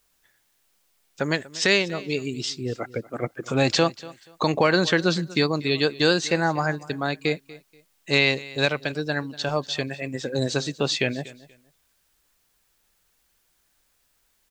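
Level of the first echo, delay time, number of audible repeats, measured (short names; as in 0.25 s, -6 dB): -19.5 dB, 0.24 s, 2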